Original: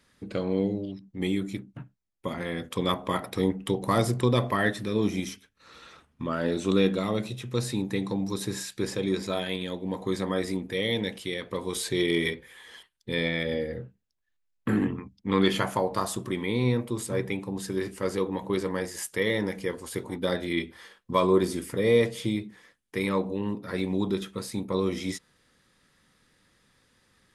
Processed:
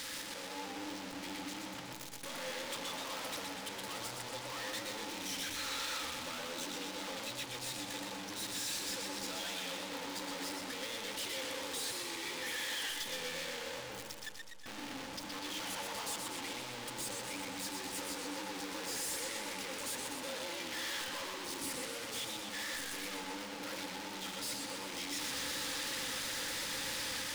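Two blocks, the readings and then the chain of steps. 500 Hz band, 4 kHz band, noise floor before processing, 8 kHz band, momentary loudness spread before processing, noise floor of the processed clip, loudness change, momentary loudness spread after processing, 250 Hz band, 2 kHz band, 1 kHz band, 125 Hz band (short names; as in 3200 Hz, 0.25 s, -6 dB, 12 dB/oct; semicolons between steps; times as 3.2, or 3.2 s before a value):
-17.5 dB, -2.0 dB, -74 dBFS, +1.5 dB, 11 LU, -45 dBFS, -10.5 dB, 6 LU, -18.0 dB, -6.0 dB, -9.0 dB, -23.5 dB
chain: infinite clipping; high shelf 8000 Hz -10 dB; limiter -38 dBFS, peak gain reduction 9 dB; AGC gain up to 5 dB; pre-emphasis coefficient 0.9; overdrive pedal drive 15 dB, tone 5200 Hz, clips at -33.5 dBFS; small resonant body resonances 290/520/860 Hz, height 13 dB, ringing for 85 ms; warbling echo 0.123 s, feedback 65%, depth 132 cents, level -4 dB; gain +1 dB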